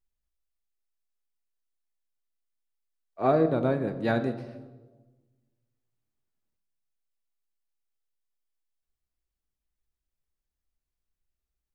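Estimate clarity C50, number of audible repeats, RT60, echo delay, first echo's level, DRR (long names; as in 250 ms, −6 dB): 11.5 dB, no echo audible, 1.3 s, no echo audible, no echo audible, 8.5 dB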